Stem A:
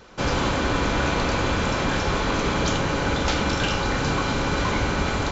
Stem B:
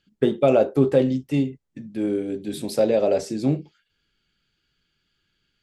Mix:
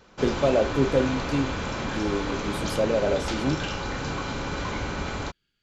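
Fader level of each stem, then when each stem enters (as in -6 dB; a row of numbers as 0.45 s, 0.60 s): -7.0 dB, -4.5 dB; 0.00 s, 0.00 s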